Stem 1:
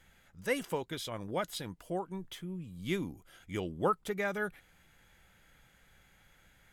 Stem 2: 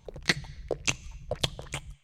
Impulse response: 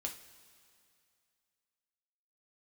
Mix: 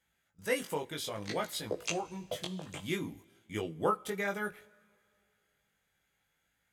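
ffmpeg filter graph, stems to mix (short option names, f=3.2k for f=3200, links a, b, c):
-filter_complex "[0:a]highpass=f=120:p=1,agate=range=-14dB:threshold=-54dB:ratio=16:detection=peak,equalizer=f=11k:t=o:w=2.2:g=4,volume=1dB,asplit=2[a][b];[b]volume=-9.5dB[c];[1:a]highpass=240,alimiter=limit=-16dB:level=0:latency=1:release=174,acrossover=split=490[d][e];[d]aeval=exprs='val(0)*(1-0.7/2+0.7/2*cos(2*PI*2.9*n/s))':c=same[f];[e]aeval=exprs='val(0)*(1-0.7/2-0.7/2*cos(2*PI*2.9*n/s))':c=same[g];[f][g]amix=inputs=2:normalize=0,adelay=1000,volume=0dB,asplit=2[h][i];[i]volume=-3.5dB[j];[2:a]atrim=start_sample=2205[k];[c][j]amix=inputs=2:normalize=0[l];[l][k]afir=irnorm=-1:irlink=0[m];[a][h][m]amix=inputs=3:normalize=0,flanger=delay=18:depth=2.4:speed=0.6"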